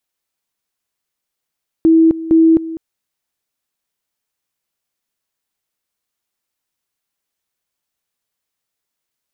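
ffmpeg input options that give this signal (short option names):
-f lavfi -i "aevalsrc='pow(10,(-6-16*gte(mod(t,0.46),0.26))/20)*sin(2*PI*325*t)':d=0.92:s=44100"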